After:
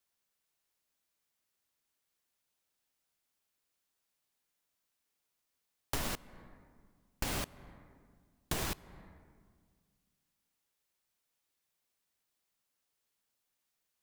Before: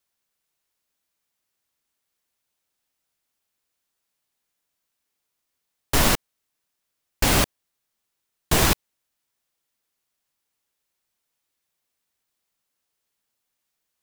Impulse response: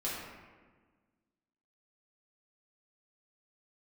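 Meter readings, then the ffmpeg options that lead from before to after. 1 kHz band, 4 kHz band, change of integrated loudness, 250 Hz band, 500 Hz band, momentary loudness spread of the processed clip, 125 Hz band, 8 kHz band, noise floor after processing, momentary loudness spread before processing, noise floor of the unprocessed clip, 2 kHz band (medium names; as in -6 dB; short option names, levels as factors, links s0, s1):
-16.5 dB, -17.0 dB, -17.0 dB, -17.0 dB, -17.0 dB, 21 LU, -16.5 dB, -17.0 dB, -84 dBFS, 7 LU, -80 dBFS, -17.0 dB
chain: -filter_complex "[0:a]asplit=2[s0][s1];[1:a]atrim=start_sample=2205,asetrate=36162,aresample=44100[s2];[s1][s2]afir=irnorm=-1:irlink=0,volume=0.0447[s3];[s0][s3]amix=inputs=2:normalize=0,acompressor=threshold=0.0316:ratio=5,volume=0.596"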